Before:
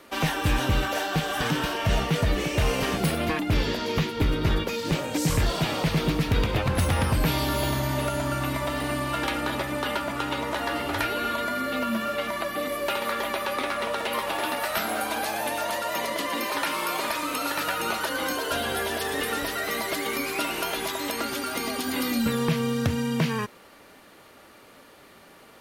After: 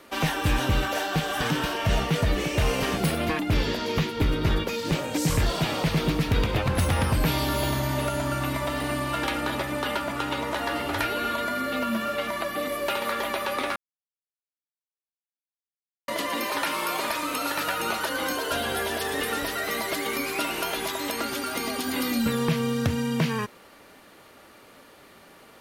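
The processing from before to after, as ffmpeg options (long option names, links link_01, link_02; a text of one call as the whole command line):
ffmpeg -i in.wav -filter_complex "[0:a]asplit=3[link_01][link_02][link_03];[link_01]atrim=end=13.76,asetpts=PTS-STARTPTS,afade=type=out:start_time=13.756:duration=0.004:curve=hsin[link_04];[link_02]atrim=start=13.76:end=16.08,asetpts=PTS-STARTPTS,volume=0[link_05];[link_03]atrim=start=16.08,asetpts=PTS-STARTPTS,afade=type=in:duration=0.004:curve=hsin[link_06];[link_04][link_05][link_06]concat=n=3:v=0:a=1" out.wav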